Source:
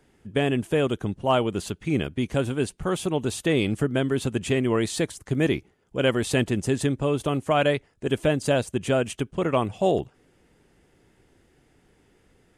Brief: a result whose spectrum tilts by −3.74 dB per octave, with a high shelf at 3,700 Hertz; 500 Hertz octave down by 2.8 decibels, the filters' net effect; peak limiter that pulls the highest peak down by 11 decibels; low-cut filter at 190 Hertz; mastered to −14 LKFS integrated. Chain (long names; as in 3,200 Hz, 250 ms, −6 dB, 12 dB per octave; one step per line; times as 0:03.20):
high-pass filter 190 Hz
parametric band 500 Hz −3.5 dB
high-shelf EQ 3,700 Hz +6 dB
level +17.5 dB
brickwall limiter −2.5 dBFS